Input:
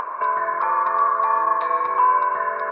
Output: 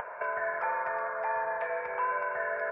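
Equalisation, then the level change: static phaser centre 1.1 kHz, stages 6; -2.5 dB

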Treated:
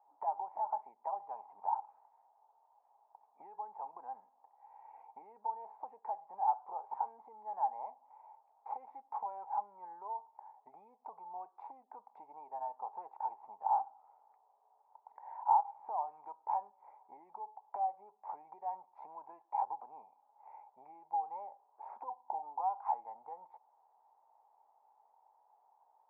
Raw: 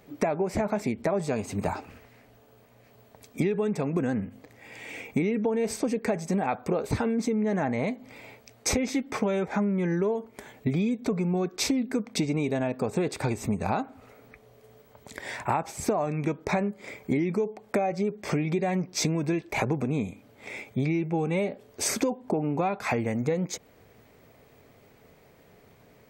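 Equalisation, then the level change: Butterworth band-pass 870 Hz, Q 5.3; distance through air 290 m; +4.0 dB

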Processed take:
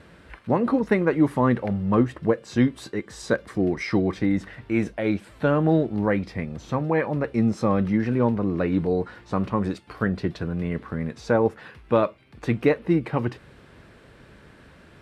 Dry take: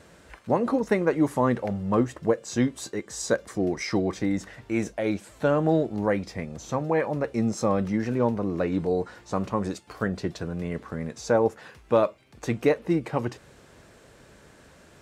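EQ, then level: low-pass 9 kHz 12 dB/octave; peaking EQ 640 Hz -5.5 dB 1.5 oct; peaking EQ 6.8 kHz -15 dB 0.95 oct; +5.0 dB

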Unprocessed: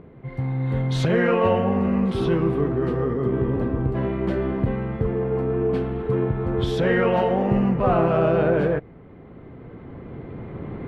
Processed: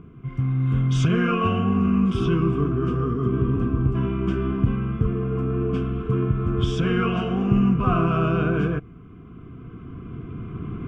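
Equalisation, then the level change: Butterworth band-stop 860 Hz, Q 3; static phaser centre 2.8 kHz, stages 8; +3.5 dB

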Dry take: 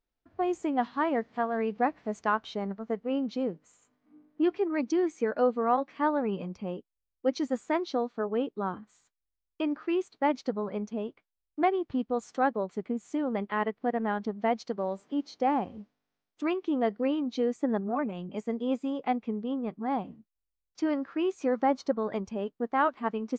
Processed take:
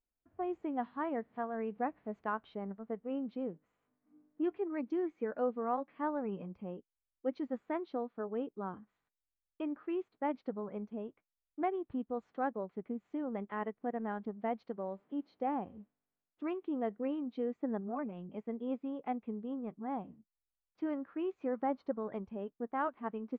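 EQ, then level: distance through air 470 m; -7.0 dB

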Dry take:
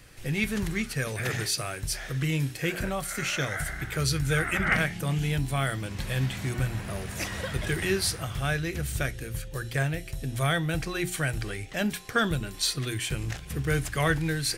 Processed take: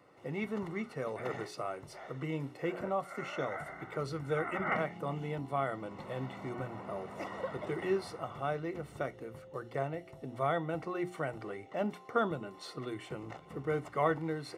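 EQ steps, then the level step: Savitzky-Golay filter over 65 samples; high-pass 200 Hz 12 dB/octave; bass shelf 380 Hz -11 dB; +3.0 dB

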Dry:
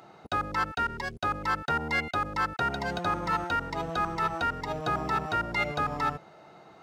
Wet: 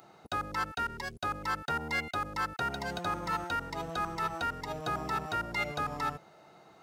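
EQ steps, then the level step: treble shelf 6.5 kHz +11 dB; -5.0 dB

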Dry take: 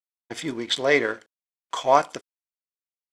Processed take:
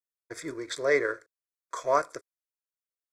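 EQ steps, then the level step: static phaser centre 810 Hz, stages 6; band-stop 2.7 kHz, Q 20; -2.5 dB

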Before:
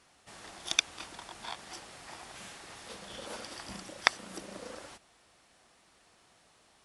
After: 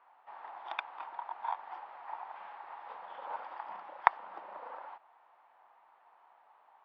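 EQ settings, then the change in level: resonant high-pass 890 Hz, resonance Q 4.9; distance through air 440 m; tape spacing loss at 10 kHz 31 dB; +2.5 dB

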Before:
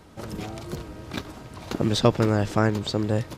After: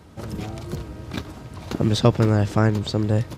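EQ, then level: high-pass 58 Hz; bass shelf 140 Hz +9.5 dB; 0.0 dB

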